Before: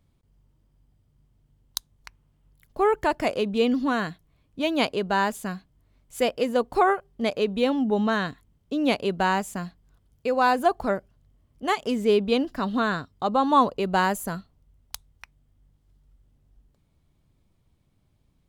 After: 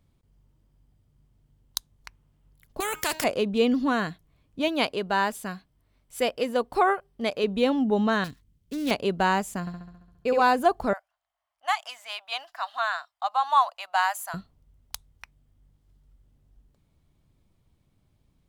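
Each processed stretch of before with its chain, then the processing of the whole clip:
2.80–3.24 s: tilt EQ +3.5 dB/octave + de-hum 314.1 Hz, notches 24 + spectrum-flattening compressor 2:1
4.68–7.44 s: bass shelf 450 Hz -5 dB + band-stop 6.8 kHz, Q 9.8
8.24–8.91 s: dead-time distortion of 0.16 ms + peaking EQ 860 Hz -12 dB 2.6 oct
9.60–10.42 s: flutter echo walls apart 11.7 m, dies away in 0.95 s + tape noise reduction on one side only decoder only
10.93–14.34 s: elliptic high-pass 690 Hz + tape noise reduction on one side only decoder only
whole clip: none

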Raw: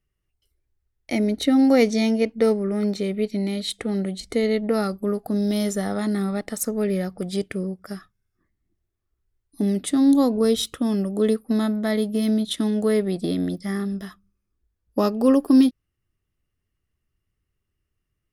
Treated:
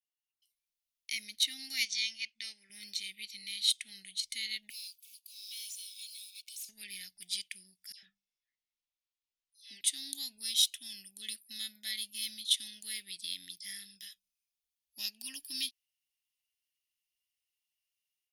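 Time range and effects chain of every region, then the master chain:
1.85–2.70 s: low-pass 6.5 kHz + bass shelf 470 Hz -10.5 dB
4.70–6.69 s: block-companded coder 7-bit + brick-wall FIR high-pass 2.2 kHz + valve stage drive 42 dB, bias 0.3
7.92–9.81 s: distance through air 94 m + hum notches 50/100/150/200 Hz + phase dispersion lows, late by 107 ms, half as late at 1.8 kHz
whole clip: inverse Chebyshev high-pass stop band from 1.3 kHz, stop band 40 dB; band-stop 7.6 kHz, Q 10; level rider gain up to 10.5 dB; trim -8.5 dB

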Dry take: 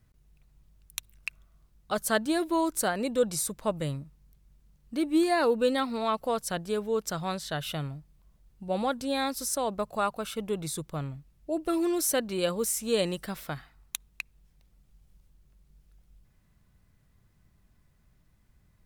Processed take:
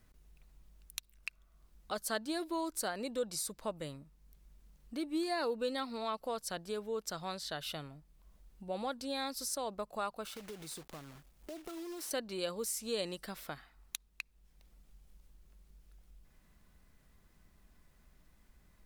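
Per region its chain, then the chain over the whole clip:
10.25–12.11 s: block-companded coder 3-bit + compression 4:1, threshold -38 dBFS
whole clip: dynamic bell 4.6 kHz, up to +7 dB, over -53 dBFS, Q 2.8; compression 1.5:1, threshold -60 dBFS; peaking EQ 110 Hz -14 dB 0.93 oct; trim +3.5 dB

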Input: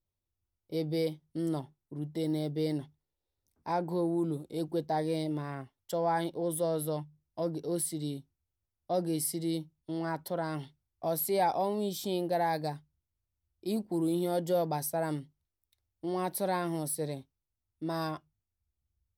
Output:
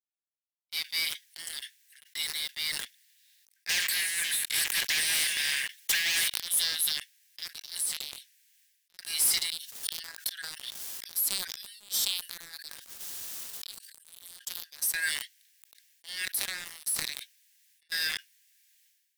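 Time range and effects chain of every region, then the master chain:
3.69–6.28 s: peaking EQ 68 Hz -3.5 dB 1.4 oct + waveshaping leveller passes 2 + spectrum-flattening compressor 4:1
7.78–8.99 s: high-pass 93 Hz 6 dB/octave + compression 5:1, threshold -45 dBFS + loudspeaker Doppler distortion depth 0.16 ms
9.50–14.91 s: peaking EQ 2.2 kHz -14 dB 0.64 oct + inverted gate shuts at -33 dBFS, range -29 dB + level flattener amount 100%
16.25–17.92 s: peaking EQ 110 Hz -12.5 dB 2.3 oct + compression 10:1, threshold -43 dBFS
whole clip: Chebyshev high-pass 1.6 kHz, order 8; waveshaping leveller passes 5; decay stretcher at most 46 dB/s

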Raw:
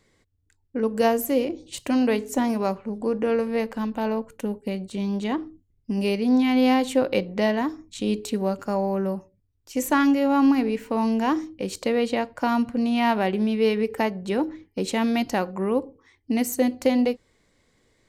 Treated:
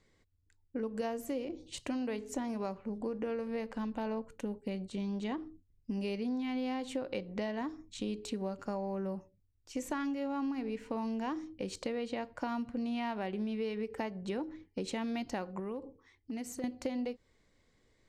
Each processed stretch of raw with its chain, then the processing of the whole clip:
15.59–16.64 s: compression, threshold -29 dBFS + overload inside the chain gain 25.5 dB
whole clip: low-pass 7.9 kHz 12 dB/octave; bass shelf 61 Hz +6.5 dB; compression, threshold -26 dBFS; trim -7 dB

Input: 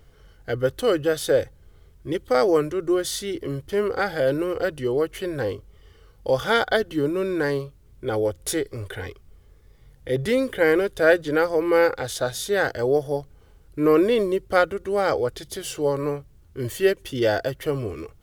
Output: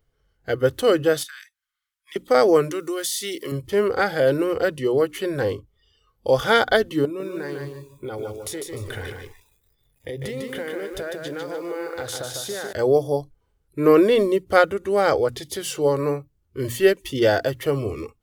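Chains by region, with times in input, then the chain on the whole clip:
1.23–2.16 s: inverse Chebyshev high-pass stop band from 620 Hz + compression, threshold -39 dBFS
2.71–3.52 s: tilt EQ +3 dB/octave + compression, threshold -26 dBFS
7.05–12.73 s: compression 16:1, threshold -30 dBFS + bit-crushed delay 150 ms, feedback 35%, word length 9-bit, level -4 dB
whole clip: hum notches 60/120/180/240/300 Hz; spectral noise reduction 19 dB; trim +3 dB

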